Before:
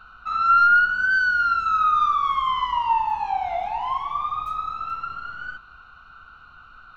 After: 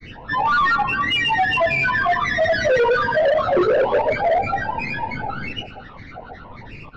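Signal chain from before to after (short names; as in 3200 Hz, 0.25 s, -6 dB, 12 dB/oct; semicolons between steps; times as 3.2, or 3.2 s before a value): in parallel at -1 dB: compressor, threshold -33 dBFS, peak gain reduction 18 dB; on the sum: grains 0.1 s, grains 22/s, pitch spread up and down by 12 st; ten-band EQ 125 Hz +10 dB, 250 Hz +12 dB, 500 Hz +10 dB, 1000 Hz -7 dB, 2000 Hz -6 dB, 4000 Hz +5 dB; on a send at -17 dB: reverb RT60 1.4 s, pre-delay 22 ms; on the sum: hard clip -20.5 dBFS, distortion -7 dB; air absorption 180 m; gain +7 dB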